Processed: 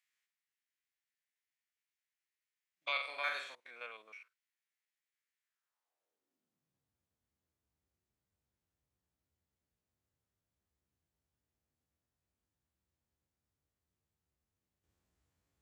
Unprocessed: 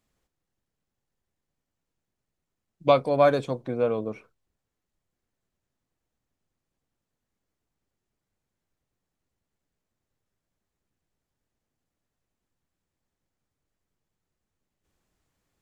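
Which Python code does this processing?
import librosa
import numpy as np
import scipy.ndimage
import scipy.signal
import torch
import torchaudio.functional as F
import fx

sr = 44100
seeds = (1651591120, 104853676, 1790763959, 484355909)

y = fx.spec_steps(x, sr, hold_ms=50)
y = fx.room_flutter(y, sr, wall_m=7.6, rt60_s=0.53, at=(2.91, 3.55))
y = fx.filter_sweep_highpass(y, sr, from_hz=2000.0, to_hz=65.0, start_s=5.43, end_s=7.02, q=2.5)
y = y * librosa.db_to_amplitude(-6.0)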